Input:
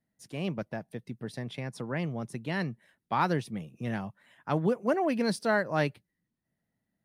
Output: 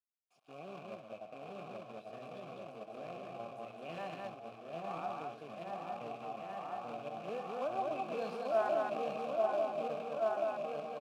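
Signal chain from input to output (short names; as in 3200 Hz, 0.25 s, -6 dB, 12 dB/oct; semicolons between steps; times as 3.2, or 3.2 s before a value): random spectral dropouts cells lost 29%; rotary speaker horn 0.7 Hz; on a send: repeats that get brighter 0.537 s, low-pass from 750 Hz, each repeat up 1 oct, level 0 dB; on the sum: tempo 0.64×; tapped delay 64/126/207/877 ms -13.5/-14/-3/-9.5 dB; harmonic-percussive split percussive -6 dB; in parallel at +2 dB: compressor 8:1, threshold -41 dBFS, peak gain reduction 18 dB; on the sum: companded quantiser 4-bit; vowel filter a; gain +2.5 dB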